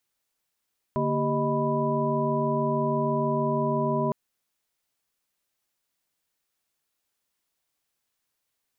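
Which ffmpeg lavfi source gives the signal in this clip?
-f lavfi -i "aevalsrc='0.0355*(sin(2*PI*146.83*t)+sin(2*PI*233.08*t)+sin(2*PI*392*t)+sin(2*PI*622.25*t)+sin(2*PI*987.77*t))':d=3.16:s=44100"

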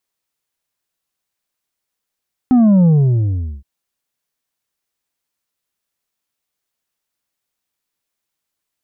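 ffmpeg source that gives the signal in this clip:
-f lavfi -i "aevalsrc='0.398*clip((1.12-t)/0.77,0,1)*tanh(1.78*sin(2*PI*260*1.12/log(65/260)*(exp(log(65/260)*t/1.12)-1)))/tanh(1.78)':d=1.12:s=44100"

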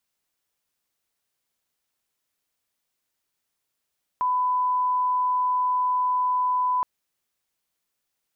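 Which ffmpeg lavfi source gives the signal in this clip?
-f lavfi -i "sine=f=1000:d=2.62:r=44100,volume=-1.94dB"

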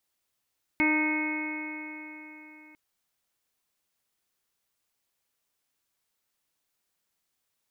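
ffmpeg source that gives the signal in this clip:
-f lavfi -i "aevalsrc='0.0631*pow(10,-3*t/3.83)*sin(2*PI*305.15*t)+0.0126*pow(10,-3*t/3.83)*sin(2*PI*611.19*t)+0.0251*pow(10,-3*t/3.83)*sin(2*PI*919.03*t)+0.00944*pow(10,-3*t/3.83)*sin(2*PI*1229.53*t)+0.0141*pow(10,-3*t/3.83)*sin(2*PI*1543.57*t)+0.01*pow(10,-3*t/3.83)*sin(2*PI*1862*t)+0.0708*pow(10,-3*t/3.83)*sin(2*PI*2185.66*t)+0.015*pow(10,-3*t/3.83)*sin(2*PI*2515.35*t)':d=1.95:s=44100"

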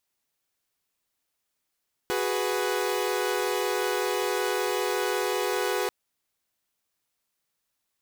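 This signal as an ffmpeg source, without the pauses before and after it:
-f lavfi -i "aevalsrc='0.0447*((2*mod(369.99*t,1)-1)+(2*mod(415.3*t,1)-1)+(2*mod(493.88*t,1)-1))':d=3.79:s=44100"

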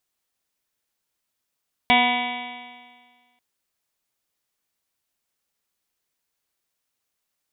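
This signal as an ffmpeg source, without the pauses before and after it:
-f lavfi -i "aevalsrc='0.0794*pow(10,-3*t/1.67)*sin(2*PI*243.12*t)+0.0224*pow(10,-3*t/1.67)*sin(2*PI*486.97*t)+0.141*pow(10,-3*t/1.67)*sin(2*PI*732.27*t)+0.0944*pow(10,-3*t/1.67)*sin(2*PI*979.75*t)+0.0126*pow(10,-3*t/1.67)*sin(2*PI*1230.09*t)+0.0119*pow(10,-3*t/1.67)*sin(2*PI*1484.01*t)+0.0224*pow(10,-3*t/1.67)*sin(2*PI*1742.18*t)+0.0631*pow(10,-3*t/1.67)*sin(2*PI*2005.24*t)+0.141*pow(10,-3*t/1.67)*sin(2*PI*2273.85*t)+0.02*pow(10,-3*t/1.67)*sin(2*PI*2548.61*t)+0.0501*pow(10,-3*t/1.67)*sin(2*PI*2830.1*t)+0.0376*pow(10,-3*t/1.67)*sin(2*PI*3118.89*t)+0.0668*pow(10,-3*t/1.67)*sin(2*PI*3415.52*t)+0.0266*pow(10,-3*t/1.67)*sin(2*PI*3720.49*t)':d=1.49:s=44100"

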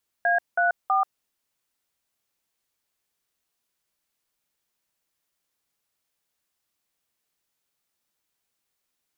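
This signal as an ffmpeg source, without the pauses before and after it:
-f lavfi -i "aevalsrc='0.0891*clip(min(mod(t,0.324),0.135-mod(t,0.324))/0.002,0,1)*(eq(floor(t/0.324),0)*(sin(2*PI*697*mod(t,0.324))+sin(2*PI*1633*mod(t,0.324)))+eq(floor(t/0.324),1)*(sin(2*PI*697*mod(t,0.324))+sin(2*PI*1477*mod(t,0.324)))+eq(floor(t/0.324),2)*(sin(2*PI*770*mod(t,0.324))+sin(2*PI*1209*mod(t,0.324))))':d=0.972:s=44100"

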